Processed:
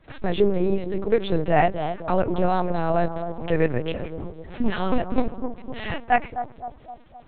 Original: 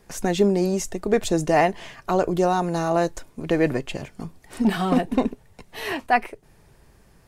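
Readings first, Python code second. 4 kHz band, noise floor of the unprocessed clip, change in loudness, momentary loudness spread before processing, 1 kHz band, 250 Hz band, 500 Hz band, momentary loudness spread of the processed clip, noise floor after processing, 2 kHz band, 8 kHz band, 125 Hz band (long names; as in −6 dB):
−3.5 dB, −56 dBFS, −2.0 dB, 15 LU, −0.5 dB, −3.0 dB, −0.5 dB, 13 LU, −49 dBFS, −1.5 dB, below −40 dB, 0.0 dB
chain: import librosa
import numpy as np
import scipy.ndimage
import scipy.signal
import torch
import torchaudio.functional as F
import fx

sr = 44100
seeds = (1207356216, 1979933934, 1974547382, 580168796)

y = fx.echo_bbd(x, sr, ms=257, stages=2048, feedback_pct=53, wet_db=-9)
y = fx.dmg_crackle(y, sr, seeds[0], per_s=86.0, level_db=-37.0)
y = fx.lpc_vocoder(y, sr, seeds[1], excitation='pitch_kept', order=8)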